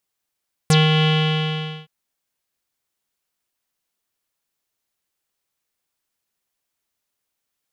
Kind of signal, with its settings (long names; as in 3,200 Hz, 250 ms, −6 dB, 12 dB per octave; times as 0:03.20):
subtractive voice square D#3 12 dB per octave, low-pass 3,100 Hz, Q 7.4, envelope 2 octaves, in 0.05 s, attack 1.3 ms, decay 0.18 s, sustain −4 dB, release 0.83 s, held 0.34 s